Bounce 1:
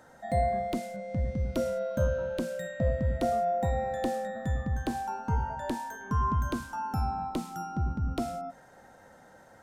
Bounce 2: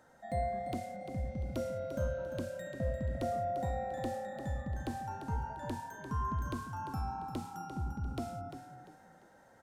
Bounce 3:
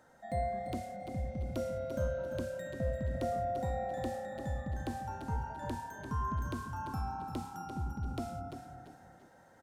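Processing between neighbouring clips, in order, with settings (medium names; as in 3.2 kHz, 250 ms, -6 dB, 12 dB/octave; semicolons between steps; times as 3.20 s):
frequency-shifting echo 346 ms, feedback 32%, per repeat +34 Hz, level -9.5 dB; trim -7.5 dB
feedback delay 340 ms, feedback 35%, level -13 dB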